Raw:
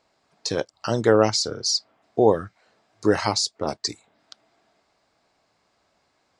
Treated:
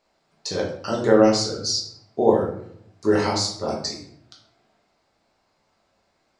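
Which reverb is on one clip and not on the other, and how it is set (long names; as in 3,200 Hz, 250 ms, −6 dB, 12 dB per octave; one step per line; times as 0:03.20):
rectangular room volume 120 cubic metres, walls mixed, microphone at 1.2 metres
level −5 dB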